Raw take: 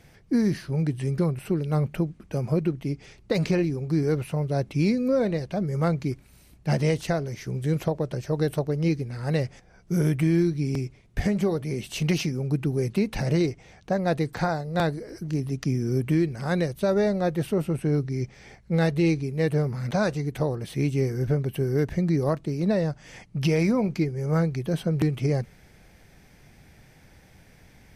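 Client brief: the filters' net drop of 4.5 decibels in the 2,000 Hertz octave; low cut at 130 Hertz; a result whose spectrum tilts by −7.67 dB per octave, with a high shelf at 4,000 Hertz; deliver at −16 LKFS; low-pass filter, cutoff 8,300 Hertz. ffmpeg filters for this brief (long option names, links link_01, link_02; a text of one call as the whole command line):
ffmpeg -i in.wav -af "highpass=130,lowpass=8300,equalizer=frequency=2000:width_type=o:gain=-4.5,highshelf=frequency=4000:gain=-5.5,volume=11dB" out.wav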